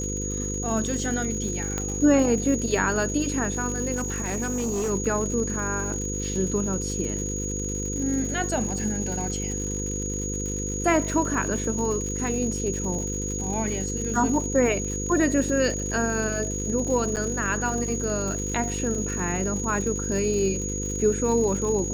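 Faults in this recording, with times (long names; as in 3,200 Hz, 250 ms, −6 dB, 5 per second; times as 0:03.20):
mains buzz 50 Hz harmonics 10 −31 dBFS
surface crackle 140 per second −32 dBFS
whistle 6,700 Hz −31 dBFS
0:01.78: click −14 dBFS
0:03.96–0:04.91: clipping −23 dBFS
0:17.16–0:17.17: drop-out 8.4 ms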